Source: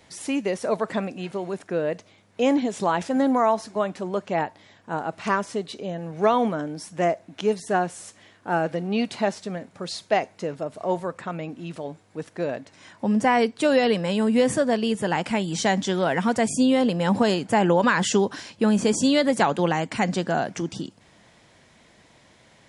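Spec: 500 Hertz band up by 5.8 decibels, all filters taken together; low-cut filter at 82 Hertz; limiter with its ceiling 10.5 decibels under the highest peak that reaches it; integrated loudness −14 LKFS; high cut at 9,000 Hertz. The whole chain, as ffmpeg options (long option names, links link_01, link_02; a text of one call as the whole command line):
ffmpeg -i in.wav -af "highpass=82,lowpass=9000,equalizer=frequency=500:width_type=o:gain=7,volume=10.5dB,alimiter=limit=-3dB:level=0:latency=1" out.wav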